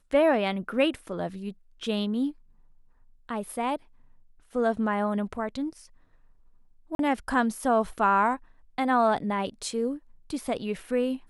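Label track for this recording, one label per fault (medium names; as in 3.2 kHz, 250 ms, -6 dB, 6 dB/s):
6.950000	6.990000	dropout 42 ms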